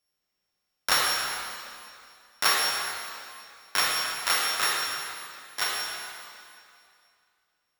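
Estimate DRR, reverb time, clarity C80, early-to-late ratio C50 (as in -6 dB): -2.0 dB, 2.4 s, 0.0 dB, -1.5 dB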